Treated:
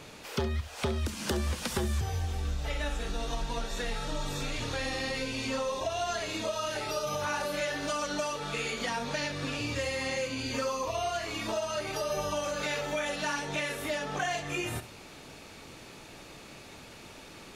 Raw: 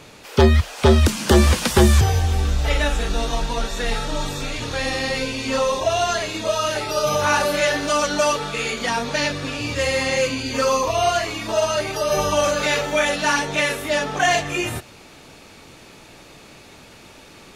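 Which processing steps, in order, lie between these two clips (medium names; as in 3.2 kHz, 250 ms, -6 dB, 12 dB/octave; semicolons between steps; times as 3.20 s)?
compression 4:1, threshold -27 dBFS, peak gain reduction 15 dB; flutter echo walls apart 11.7 m, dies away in 0.3 s; trim -4 dB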